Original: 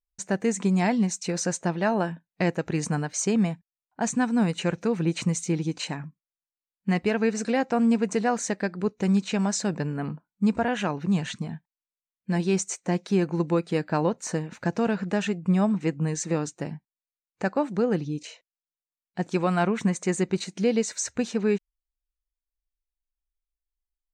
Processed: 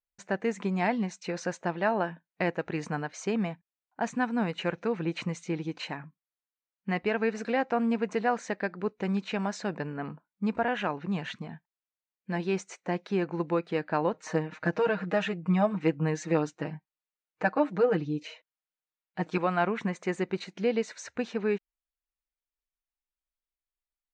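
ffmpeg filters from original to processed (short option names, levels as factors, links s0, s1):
-filter_complex "[0:a]asettb=1/sr,asplit=3[s0][s1][s2];[s0]atrim=end=14.134[s3];[s1]atrim=start=14.13:end=19.38,asetpts=PTS-STARTPTS,afade=t=in:d=0.004:c=qsin,afade=t=out:st=5.246:d=0.004:c=qsin,aecho=1:1:6.4:0.95,atrim=end_sample=231525[s4];[s2]atrim=start=19.376[s5];[s3][s4]acrossfade=d=0.004:c1=hsin:c2=qsin[s6];[s6][s5]acrossfade=d=0.004:c1=qsin:c2=hsin,lowpass=2900,lowshelf=f=270:g=-11.5"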